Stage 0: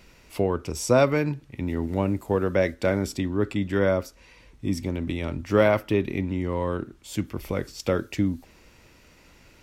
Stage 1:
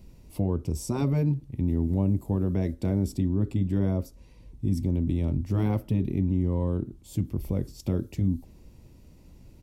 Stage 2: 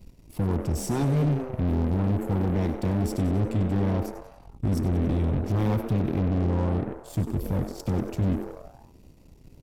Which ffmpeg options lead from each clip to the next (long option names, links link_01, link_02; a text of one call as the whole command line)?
ffmpeg -i in.wav -filter_complex "[0:a]afftfilt=real='re*lt(hypot(re,im),0.562)':imag='im*lt(hypot(re,im),0.562)':win_size=1024:overlap=0.75,firequalizer=gain_entry='entry(130,0);entry(460,-11);entry(940,-15);entry(1400,-25);entry(3900,-17);entry(6200,-16);entry(10000,-10)':delay=0.05:min_phase=1,asplit=2[link_01][link_02];[link_02]alimiter=level_in=2dB:limit=-24dB:level=0:latency=1:release=46,volume=-2dB,volume=1.5dB[link_03];[link_01][link_03]amix=inputs=2:normalize=0" out.wav
ffmpeg -i in.wav -filter_complex "[0:a]asplit=2[link_01][link_02];[link_02]asplit=6[link_03][link_04][link_05][link_06][link_07][link_08];[link_03]adelay=94,afreqshift=120,volume=-12.5dB[link_09];[link_04]adelay=188,afreqshift=240,volume=-17.5dB[link_10];[link_05]adelay=282,afreqshift=360,volume=-22.6dB[link_11];[link_06]adelay=376,afreqshift=480,volume=-27.6dB[link_12];[link_07]adelay=470,afreqshift=600,volume=-32.6dB[link_13];[link_08]adelay=564,afreqshift=720,volume=-37.7dB[link_14];[link_09][link_10][link_11][link_12][link_13][link_14]amix=inputs=6:normalize=0[link_15];[link_01][link_15]amix=inputs=2:normalize=0,asoftclip=type=tanh:threshold=-29dB,aeval=exprs='0.0355*(cos(1*acos(clip(val(0)/0.0355,-1,1)))-cos(1*PI/2))+0.00794*(cos(3*acos(clip(val(0)/0.0355,-1,1)))-cos(3*PI/2))+0.00224*(cos(6*acos(clip(val(0)/0.0355,-1,1)))-cos(6*PI/2))':channel_layout=same,volume=7.5dB" out.wav